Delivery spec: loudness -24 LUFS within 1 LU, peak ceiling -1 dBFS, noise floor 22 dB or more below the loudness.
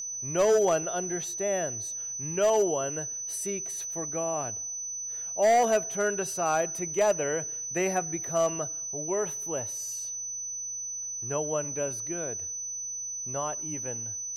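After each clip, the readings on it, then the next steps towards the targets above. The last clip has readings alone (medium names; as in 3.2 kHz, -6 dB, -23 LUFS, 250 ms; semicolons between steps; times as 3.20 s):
clipped samples 0.6%; clipping level -17.5 dBFS; steady tone 6 kHz; tone level -33 dBFS; loudness -29.0 LUFS; peak level -17.5 dBFS; loudness target -24.0 LUFS
-> clip repair -17.5 dBFS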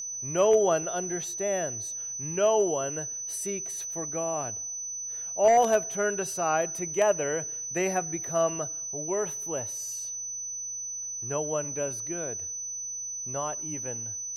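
clipped samples 0.0%; steady tone 6 kHz; tone level -33 dBFS
-> band-stop 6 kHz, Q 30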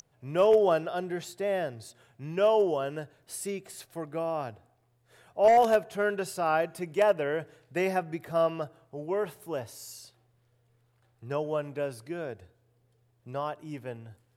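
steady tone not found; loudness -29.0 LUFS; peak level -10.5 dBFS; loudness target -24.0 LUFS
-> trim +5 dB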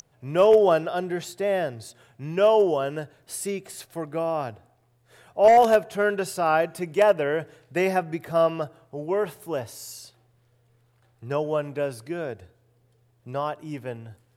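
loudness -24.0 LUFS; peak level -5.5 dBFS; noise floor -64 dBFS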